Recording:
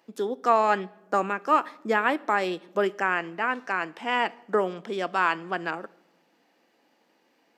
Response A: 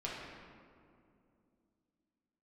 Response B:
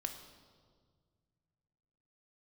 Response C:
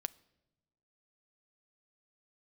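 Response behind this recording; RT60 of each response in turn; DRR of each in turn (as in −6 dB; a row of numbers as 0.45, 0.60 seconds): C; 2.5 s, 1.8 s, non-exponential decay; −6.0, 4.5, 16.5 decibels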